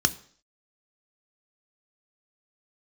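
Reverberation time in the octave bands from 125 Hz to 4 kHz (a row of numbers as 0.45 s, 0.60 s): 0.45 s, 0.55 s, 0.55 s, 0.50 s, 0.50 s, 0.55 s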